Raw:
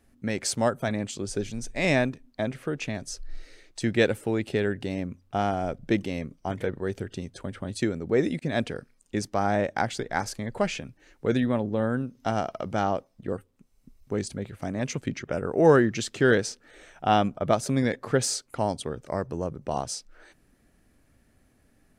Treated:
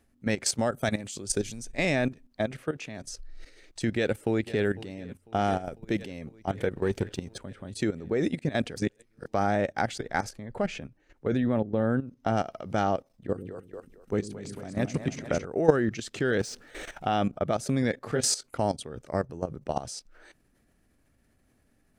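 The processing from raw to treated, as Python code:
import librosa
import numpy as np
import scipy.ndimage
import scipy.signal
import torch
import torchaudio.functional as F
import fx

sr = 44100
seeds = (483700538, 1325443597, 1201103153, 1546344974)

y = fx.high_shelf(x, sr, hz=5000.0, db=12.0, at=(0.72, 1.65))
y = fx.highpass(y, sr, hz=110.0, slope=6, at=(2.64, 3.05))
y = fx.echo_throw(y, sr, start_s=3.93, length_s=0.69, ms=500, feedback_pct=75, wet_db=-17.5)
y = fx.high_shelf(y, sr, hz=8400.0, db=8.5, at=(5.44, 6.02))
y = fx.leveller(y, sr, passes=1, at=(6.71, 7.38))
y = fx.high_shelf(y, sr, hz=2600.0, db=-9.0, at=(10.29, 12.37))
y = fx.echo_split(y, sr, split_hz=370.0, low_ms=102, high_ms=225, feedback_pct=52, wet_db=-3.0, at=(13.13, 15.46))
y = fx.power_curve(y, sr, exponent=0.7, at=(16.4, 17.06))
y = fx.doubler(y, sr, ms=20.0, db=-5.5, at=(18.09, 18.58))
y = fx.edit(y, sr, fx.reverse_span(start_s=8.76, length_s=0.5), tone=tone)
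y = fx.dynamic_eq(y, sr, hz=1000.0, q=8.0, threshold_db=-50.0, ratio=4.0, max_db=-7)
y = fx.level_steps(y, sr, step_db=14)
y = y * 10.0 ** (3.0 / 20.0)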